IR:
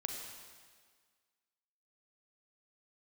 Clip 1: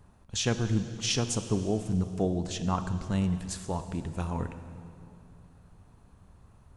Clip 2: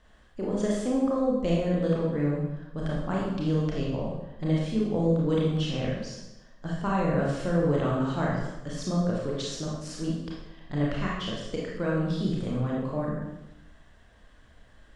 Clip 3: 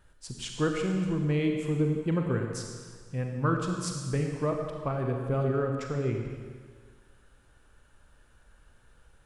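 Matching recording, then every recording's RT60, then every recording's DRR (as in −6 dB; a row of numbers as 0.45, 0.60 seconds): 3; 2.6, 0.95, 1.7 seconds; 9.0, −4.5, 2.0 decibels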